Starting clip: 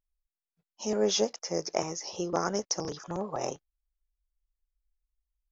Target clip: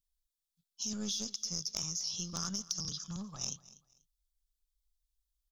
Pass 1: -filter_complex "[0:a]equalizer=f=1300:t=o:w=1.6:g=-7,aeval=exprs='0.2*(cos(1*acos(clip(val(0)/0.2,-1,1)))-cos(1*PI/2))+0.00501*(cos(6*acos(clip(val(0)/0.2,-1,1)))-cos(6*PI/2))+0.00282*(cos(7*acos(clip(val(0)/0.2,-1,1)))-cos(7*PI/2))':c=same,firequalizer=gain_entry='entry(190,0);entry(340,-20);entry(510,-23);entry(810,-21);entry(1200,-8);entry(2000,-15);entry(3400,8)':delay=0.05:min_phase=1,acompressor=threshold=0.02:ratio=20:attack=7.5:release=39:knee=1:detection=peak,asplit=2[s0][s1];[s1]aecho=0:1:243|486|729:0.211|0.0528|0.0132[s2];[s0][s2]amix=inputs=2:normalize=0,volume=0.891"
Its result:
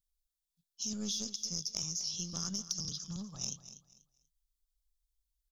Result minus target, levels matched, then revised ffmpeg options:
1 kHz band -5.0 dB; echo-to-direct +6 dB
-filter_complex "[0:a]aeval=exprs='0.2*(cos(1*acos(clip(val(0)/0.2,-1,1)))-cos(1*PI/2))+0.00501*(cos(6*acos(clip(val(0)/0.2,-1,1)))-cos(6*PI/2))+0.00282*(cos(7*acos(clip(val(0)/0.2,-1,1)))-cos(7*PI/2))':c=same,firequalizer=gain_entry='entry(190,0);entry(340,-20);entry(510,-23);entry(810,-21);entry(1200,-8);entry(2000,-15);entry(3400,8)':delay=0.05:min_phase=1,acompressor=threshold=0.02:ratio=20:attack=7.5:release=39:knee=1:detection=peak,asplit=2[s0][s1];[s1]aecho=0:1:243|486:0.106|0.0265[s2];[s0][s2]amix=inputs=2:normalize=0,volume=0.891"

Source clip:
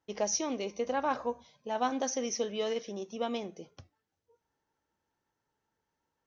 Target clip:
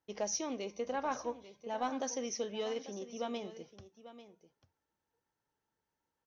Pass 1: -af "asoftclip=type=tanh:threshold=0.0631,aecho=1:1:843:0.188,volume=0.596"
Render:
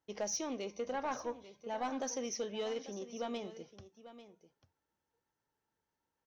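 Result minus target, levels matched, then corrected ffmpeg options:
saturation: distortion +11 dB
-af "asoftclip=type=tanh:threshold=0.15,aecho=1:1:843:0.188,volume=0.596"

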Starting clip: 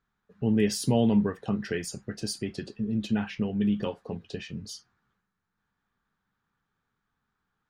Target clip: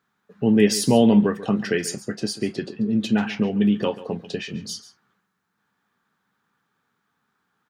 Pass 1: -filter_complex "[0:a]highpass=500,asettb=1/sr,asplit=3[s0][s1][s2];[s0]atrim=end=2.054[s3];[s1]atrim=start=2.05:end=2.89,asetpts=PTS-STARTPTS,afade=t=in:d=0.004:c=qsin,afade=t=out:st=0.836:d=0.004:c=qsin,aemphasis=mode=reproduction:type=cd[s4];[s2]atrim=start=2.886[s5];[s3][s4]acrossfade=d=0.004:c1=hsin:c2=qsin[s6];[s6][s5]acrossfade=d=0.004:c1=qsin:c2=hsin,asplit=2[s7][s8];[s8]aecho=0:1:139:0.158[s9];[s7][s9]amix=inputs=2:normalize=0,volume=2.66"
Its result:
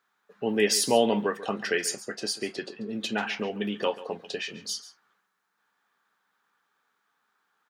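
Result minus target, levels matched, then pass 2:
125 Hz band -8.5 dB
-filter_complex "[0:a]highpass=170,asettb=1/sr,asplit=3[s0][s1][s2];[s0]atrim=end=2.054[s3];[s1]atrim=start=2.05:end=2.89,asetpts=PTS-STARTPTS,afade=t=in:d=0.004:c=qsin,afade=t=out:st=0.836:d=0.004:c=qsin,aemphasis=mode=reproduction:type=cd[s4];[s2]atrim=start=2.886[s5];[s3][s4]acrossfade=d=0.004:c1=hsin:c2=qsin[s6];[s6][s5]acrossfade=d=0.004:c1=qsin:c2=hsin,asplit=2[s7][s8];[s8]aecho=0:1:139:0.158[s9];[s7][s9]amix=inputs=2:normalize=0,volume=2.66"

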